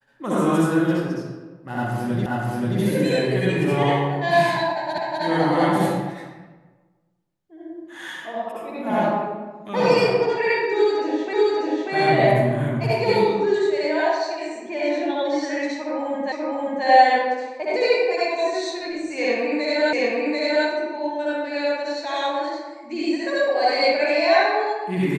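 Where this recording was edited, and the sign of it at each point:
2.26 repeat of the last 0.53 s
4.98 repeat of the last 0.25 s
11.33 repeat of the last 0.59 s
16.32 repeat of the last 0.53 s
19.93 repeat of the last 0.74 s

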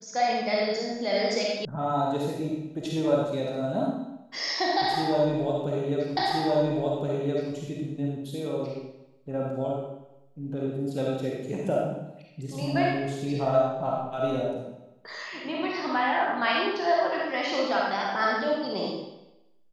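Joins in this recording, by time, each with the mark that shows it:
1.65 sound cut off
6.17 repeat of the last 1.37 s

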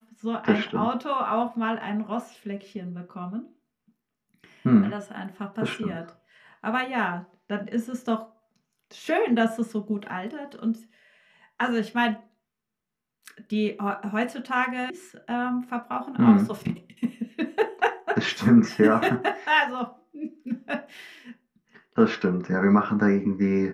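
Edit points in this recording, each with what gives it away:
14.9 sound cut off

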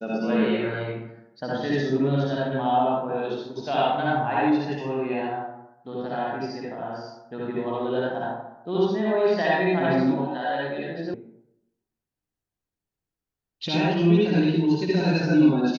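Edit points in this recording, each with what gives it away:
11.14 sound cut off

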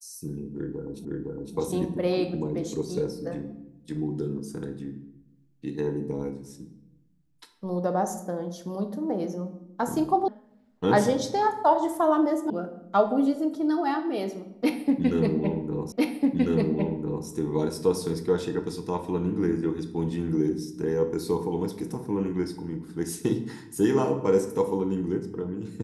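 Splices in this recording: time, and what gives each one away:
1.05 repeat of the last 0.51 s
10.28 sound cut off
12.5 sound cut off
15.92 repeat of the last 1.35 s

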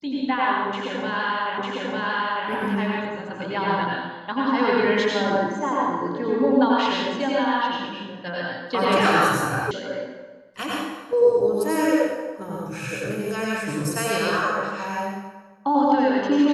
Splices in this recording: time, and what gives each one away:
1.58 repeat of the last 0.9 s
9.71 sound cut off

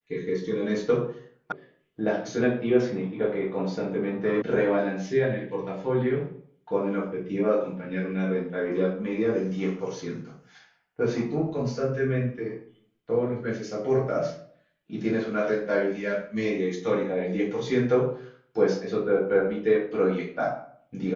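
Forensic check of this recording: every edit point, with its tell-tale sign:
1.52 sound cut off
4.42 sound cut off

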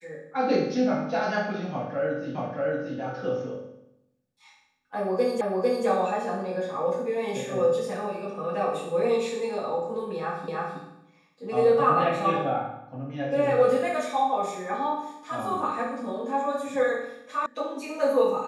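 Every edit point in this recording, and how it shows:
2.35 repeat of the last 0.63 s
5.41 repeat of the last 0.45 s
10.48 repeat of the last 0.32 s
17.46 sound cut off

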